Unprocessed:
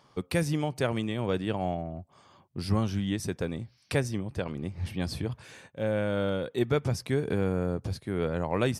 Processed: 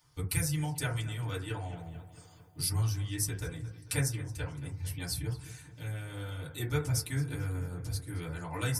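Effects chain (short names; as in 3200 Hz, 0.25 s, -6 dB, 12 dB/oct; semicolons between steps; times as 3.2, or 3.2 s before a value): EQ curve 140 Hz 0 dB, 220 Hz -24 dB, 720 Hz -20 dB, 4600 Hz -1 dB, 11000 Hz +11 dB; darkening echo 0.222 s, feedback 62%, low-pass 4500 Hz, level -14 dB; harmonic-percussive split harmonic -12 dB; 1.77–2.69 high shelf 4300 Hz +8 dB; FDN reverb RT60 0.35 s, low-frequency decay 1×, high-frequency decay 0.25×, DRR -9 dB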